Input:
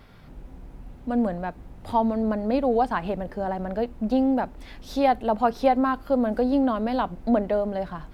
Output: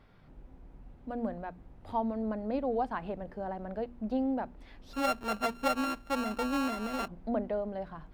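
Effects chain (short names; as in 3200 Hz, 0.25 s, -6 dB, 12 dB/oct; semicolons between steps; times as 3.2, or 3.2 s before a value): 4.93–7.08 sample sorter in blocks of 32 samples; high shelf 4700 Hz -10.5 dB; notches 60/120/180/240 Hz; gain -9 dB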